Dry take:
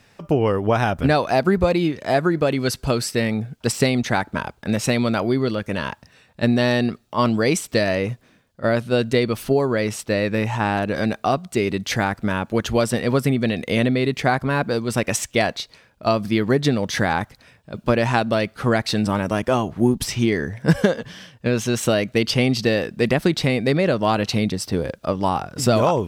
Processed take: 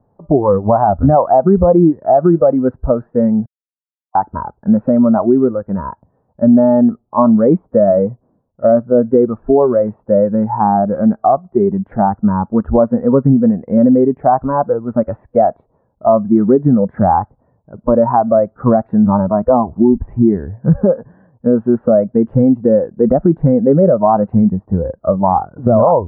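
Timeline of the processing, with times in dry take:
0:03.46–0:04.15: silence
whole clip: Butterworth low-pass 990 Hz 36 dB per octave; noise reduction from a noise print of the clip's start 14 dB; boost into a limiter +13.5 dB; level −1 dB

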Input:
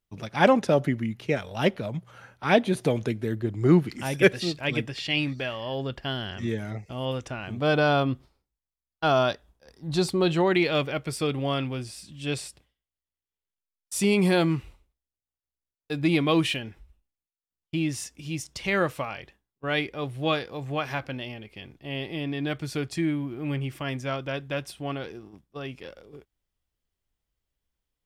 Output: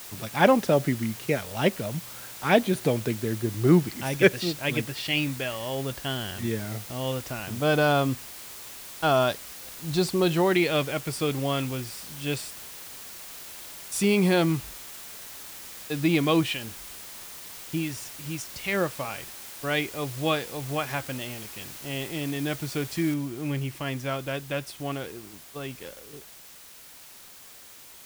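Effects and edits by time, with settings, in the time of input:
0:16.43–0:19.05: two-band tremolo in antiphase 3.8 Hz, depth 50%, crossover 900 Hz
0:23.14: noise floor change −42 dB −48 dB

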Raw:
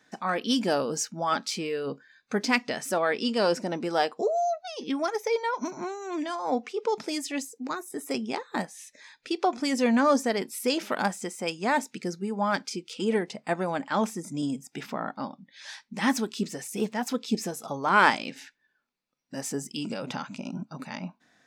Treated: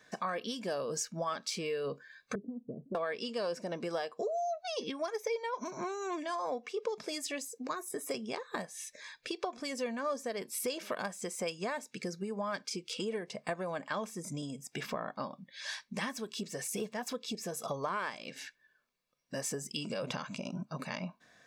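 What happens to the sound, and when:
0:02.35–0:02.95: inverse Chebyshev low-pass filter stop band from 1,600 Hz, stop band 70 dB
whole clip: downward compressor 10 to 1, threshold −34 dBFS; comb filter 1.8 ms, depth 48%; level +1 dB

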